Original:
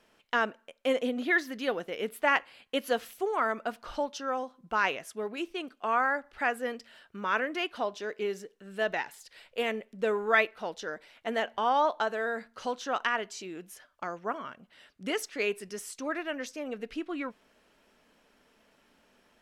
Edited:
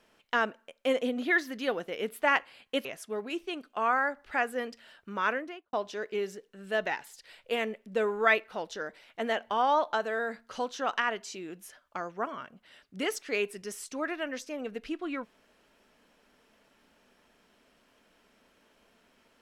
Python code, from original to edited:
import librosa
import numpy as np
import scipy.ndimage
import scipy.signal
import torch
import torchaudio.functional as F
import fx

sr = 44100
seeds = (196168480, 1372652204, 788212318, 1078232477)

y = fx.studio_fade_out(x, sr, start_s=7.33, length_s=0.47)
y = fx.edit(y, sr, fx.cut(start_s=2.85, length_s=2.07), tone=tone)